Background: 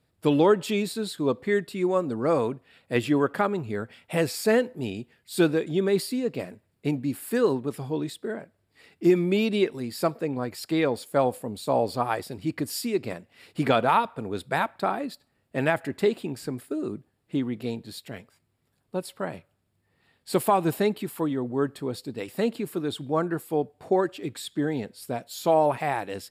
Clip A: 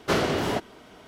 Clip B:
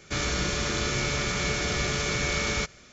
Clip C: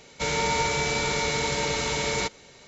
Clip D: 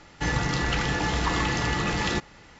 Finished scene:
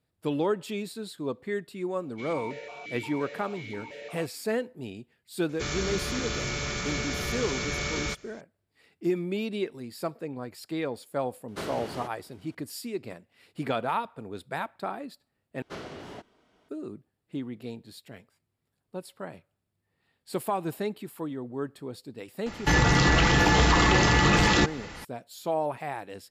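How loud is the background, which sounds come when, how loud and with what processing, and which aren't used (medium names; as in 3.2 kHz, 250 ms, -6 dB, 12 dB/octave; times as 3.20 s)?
background -7.5 dB
1.98 s: add C -3 dB + stepped vowel filter 5.7 Hz
5.49 s: add B -4 dB
11.48 s: add A -12.5 dB + CVSD coder 64 kbps
15.62 s: replace with A -16.5 dB + Bessel low-pass 9 kHz
22.46 s: add D -10.5 dB + loudness maximiser +19 dB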